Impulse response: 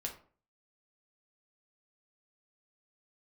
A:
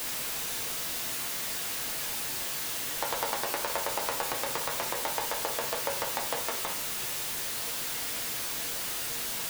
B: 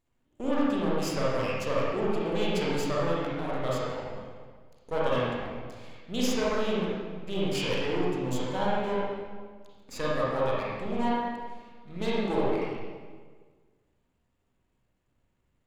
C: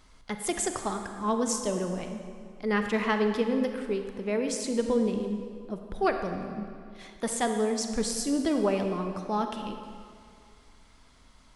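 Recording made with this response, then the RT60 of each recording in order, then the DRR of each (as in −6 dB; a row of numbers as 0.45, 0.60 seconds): A; 0.45, 1.6, 2.3 seconds; 0.5, −7.0, 5.5 decibels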